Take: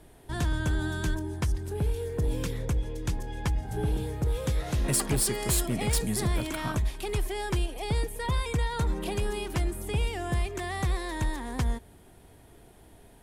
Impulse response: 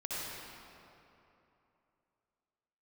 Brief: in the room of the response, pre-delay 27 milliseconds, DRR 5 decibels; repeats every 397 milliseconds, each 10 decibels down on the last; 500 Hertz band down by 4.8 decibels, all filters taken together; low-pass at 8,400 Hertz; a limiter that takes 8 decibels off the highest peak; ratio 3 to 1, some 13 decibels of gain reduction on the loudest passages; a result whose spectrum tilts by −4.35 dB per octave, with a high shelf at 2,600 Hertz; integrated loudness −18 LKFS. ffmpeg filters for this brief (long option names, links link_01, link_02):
-filter_complex "[0:a]lowpass=8400,equalizer=frequency=500:width_type=o:gain=-6.5,highshelf=frequency=2600:gain=4.5,acompressor=threshold=-42dB:ratio=3,alimiter=level_in=11.5dB:limit=-24dB:level=0:latency=1,volume=-11.5dB,aecho=1:1:397|794|1191|1588:0.316|0.101|0.0324|0.0104,asplit=2[link_01][link_02];[1:a]atrim=start_sample=2205,adelay=27[link_03];[link_02][link_03]afir=irnorm=-1:irlink=0,volume=-8.5dB[link_04];[link_01][link_04]amix=inputs=2:normalize=0,volume=25.5dB"